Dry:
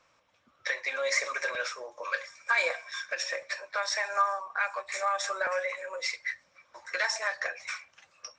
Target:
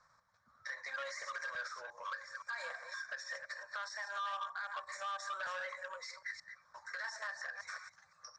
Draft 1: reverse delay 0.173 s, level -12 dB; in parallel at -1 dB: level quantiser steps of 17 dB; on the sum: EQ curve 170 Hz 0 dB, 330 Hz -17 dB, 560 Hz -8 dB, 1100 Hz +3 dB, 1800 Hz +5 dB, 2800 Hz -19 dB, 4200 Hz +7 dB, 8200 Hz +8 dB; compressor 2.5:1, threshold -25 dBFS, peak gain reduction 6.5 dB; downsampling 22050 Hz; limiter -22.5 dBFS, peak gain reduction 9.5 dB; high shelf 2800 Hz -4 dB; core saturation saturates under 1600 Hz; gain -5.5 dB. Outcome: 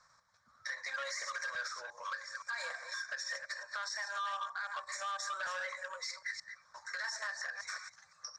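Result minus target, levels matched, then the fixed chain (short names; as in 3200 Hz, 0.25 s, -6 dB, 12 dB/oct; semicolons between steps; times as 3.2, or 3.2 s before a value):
4000 Hz band +3.0 dB
reverse delay 0.173 s, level -12 dB; in parallel at -1 dB: level quantiser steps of 17 dB; on the sum: EQ curve 170 Hz 0 dB, 330 Hz -17 dB, 560 Hz -8 dB, 1100 Hz +3 dB, 1800 Hz +5 dB, 2800 Hz -19 dB, 4200 Hz +7 dB, 8200 Hz +8 dB; compressor 2.5:1, threshold -25 dBFS, peak gain reduction 6.5 dB; downsampling 22050 Hz; limiter -22.5 dBFS, peak gain reduction 9.5 dB; high shelf 2800 Hz -14 dB; core saturation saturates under 1600 Hz; gain -5.5 dB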